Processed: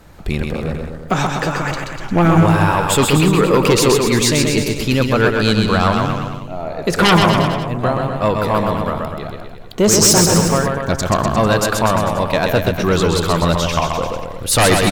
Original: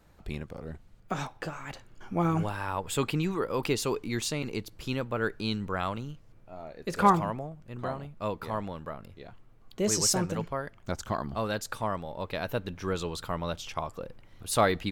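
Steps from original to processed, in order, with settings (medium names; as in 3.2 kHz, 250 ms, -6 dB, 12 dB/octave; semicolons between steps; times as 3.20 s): sine folder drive 10 dB, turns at -10.5 dBFS; bouncing-ball echo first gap 130 ms, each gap 0.9×, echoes 5; trim +2.5 dB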